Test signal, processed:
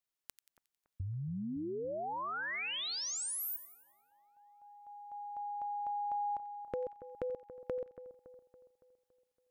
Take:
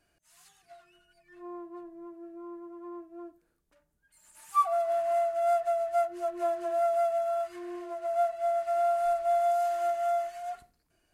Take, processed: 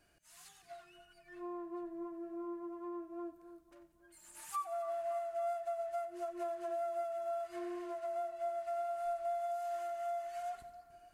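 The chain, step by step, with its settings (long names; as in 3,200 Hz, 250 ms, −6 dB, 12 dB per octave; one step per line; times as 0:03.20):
downward compressor 4 to 1, threshold −41 dBFS
echo with a time of its own for lows and highs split 1,600 Hz, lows 281 ms, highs 90 ms, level −13.5 dB
level +1.5 dB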